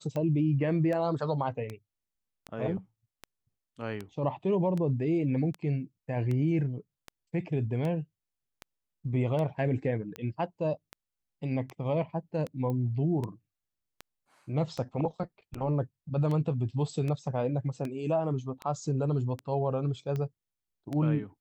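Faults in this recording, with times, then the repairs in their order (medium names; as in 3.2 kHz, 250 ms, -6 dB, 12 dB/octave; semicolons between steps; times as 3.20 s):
tick 78 rpm -23 dBFS
12.70 s: pop -24 dBFS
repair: de-click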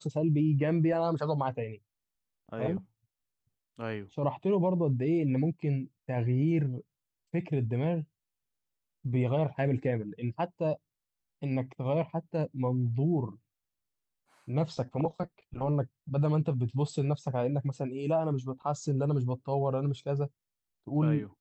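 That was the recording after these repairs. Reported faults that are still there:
nothing left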